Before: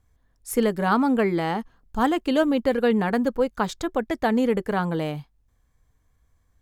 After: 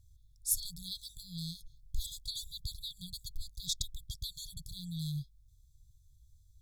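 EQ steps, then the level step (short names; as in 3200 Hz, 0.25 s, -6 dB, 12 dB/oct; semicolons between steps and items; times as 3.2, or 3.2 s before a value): brick-wall FIR band-stop 150–3300 Hz; +3.0 dB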